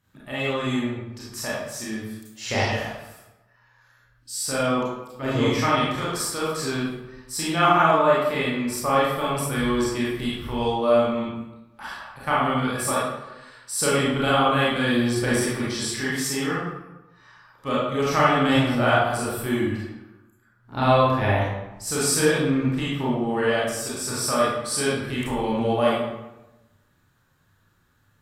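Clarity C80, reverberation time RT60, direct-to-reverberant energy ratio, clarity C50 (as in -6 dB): 2.5 dB, 1.0 s, -7.5 dB, -2.0 dB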